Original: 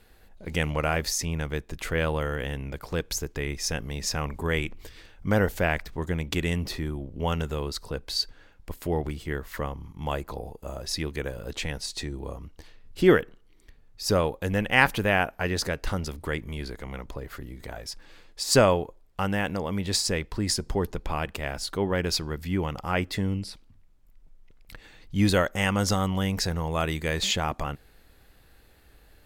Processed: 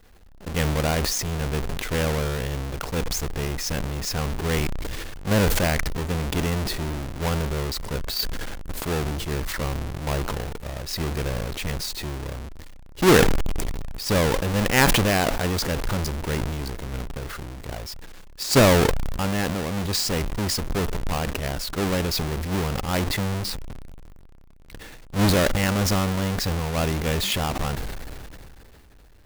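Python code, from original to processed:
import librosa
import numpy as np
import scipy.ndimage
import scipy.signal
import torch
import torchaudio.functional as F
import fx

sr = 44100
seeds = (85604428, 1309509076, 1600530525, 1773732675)

y = fx.halfwave_hold(x, sr)
y = fx.sustainer(y, sr, db_per_s=22.0)
y = y * librosa.db_to_amplitude(-3.0)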